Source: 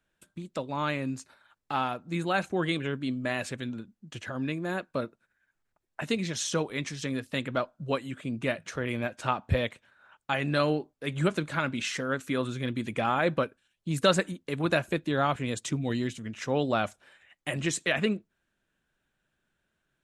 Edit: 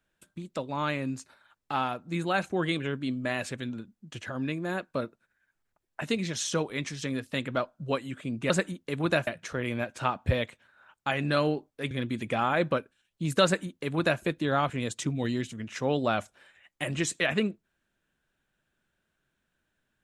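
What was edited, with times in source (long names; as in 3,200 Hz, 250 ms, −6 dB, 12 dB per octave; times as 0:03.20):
0:11.14–0:12.57: remove
0:14.10–0:14.87: duplicate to 0:08.50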